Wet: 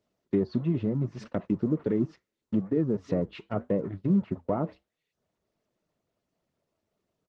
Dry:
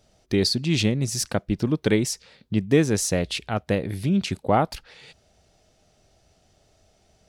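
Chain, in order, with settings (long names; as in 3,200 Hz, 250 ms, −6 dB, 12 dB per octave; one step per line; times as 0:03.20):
converter with a step at zero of −29 dBFS
single-tap delay 365 ms −21 dB
noise gate −26 dBFS, range −36 dB
high-shelf EQ 2,900 Hz −2 dB, from 0:01.99 −7 dB
brickwall limiter −14 dBFS, peak gain reduction 7.5 dB
spectral tilt −2 dB per octave
treble cut that deepens with the level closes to 1,100 Hz, closed at −15.5 dBFS
reverb reduction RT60 0.55 s
band-pass filter 160–6,600 Hz
notch comb filter 790 Hz
flanger 0.74 Hz, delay 3.2 ms, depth 4.9 ms, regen −80%
Opus 16 kbit/s 48,000 Hz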